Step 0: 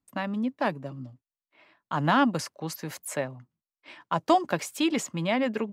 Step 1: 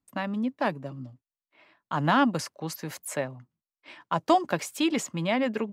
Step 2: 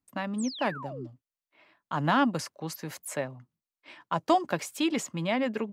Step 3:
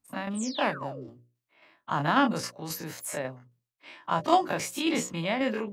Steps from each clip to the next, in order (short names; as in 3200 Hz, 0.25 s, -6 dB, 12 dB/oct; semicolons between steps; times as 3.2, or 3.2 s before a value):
nothing audible
painted sound fall, 0.38–1.07, 300–9000 Hz -39 dBFS; gain -2 dB
spectral dilation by 60 ms; tremolo saw down 3.7 Hz, depth 50%; notches 60/120/180/240/300/360/420/480/540/600 Hz